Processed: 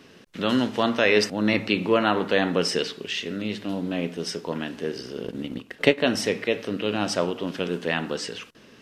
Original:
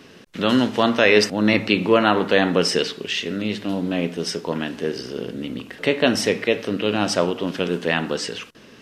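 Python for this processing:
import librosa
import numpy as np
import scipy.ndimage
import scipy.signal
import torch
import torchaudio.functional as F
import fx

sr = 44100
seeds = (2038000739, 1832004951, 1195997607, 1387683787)

y = fx.transient(x, sr, attack_db=8, sustain_db=-8, at=(5.23, 5.98))
y = y * librosa.db_to_amplitude(-4.5)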